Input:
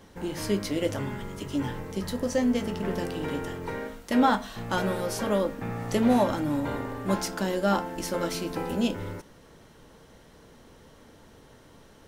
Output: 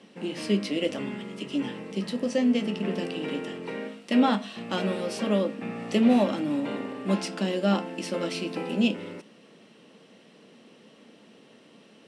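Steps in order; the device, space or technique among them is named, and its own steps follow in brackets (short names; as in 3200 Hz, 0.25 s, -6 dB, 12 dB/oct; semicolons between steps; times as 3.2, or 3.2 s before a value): television speaker (speaker cabinet 180–8700 Hz, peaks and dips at 210 Hz +6 dB, 920 Hz -7 dB, 1500 Hz -6 dB, 2700 Hz +9 dB, 6600 Hz -8 dB)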